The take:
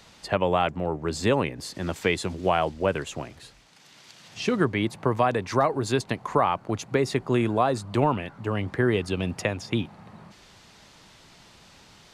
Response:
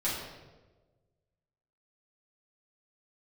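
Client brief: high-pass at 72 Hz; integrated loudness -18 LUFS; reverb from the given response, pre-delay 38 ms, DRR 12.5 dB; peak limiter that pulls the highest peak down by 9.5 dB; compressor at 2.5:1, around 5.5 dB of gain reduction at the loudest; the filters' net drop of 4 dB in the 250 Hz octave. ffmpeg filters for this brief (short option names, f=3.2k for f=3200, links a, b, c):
-filter_complex "[0:a]highpass=72,equalizer=f=250:t=o:g=-5.5,acompressor=threshold=-26dB:ratio=2.5,alimiter=limit=-21.5dB:level=0:latency=1,asplit=2[a][b];[1:a]atrim=start_sample=2205,adelay=38[c];[b][c]afir=irnorm=-1:irlink=0,volume=-20dB[d];[a][d]amix=inputs=2:normalize=0,volume=15.5dB"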